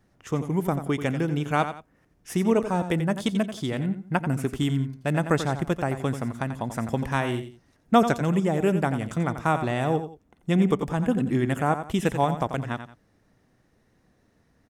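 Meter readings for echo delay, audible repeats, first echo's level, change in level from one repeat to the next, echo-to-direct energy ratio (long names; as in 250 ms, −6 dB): 88 ms, 2, −10.0 dB, −10.5 dB, −9.5 dB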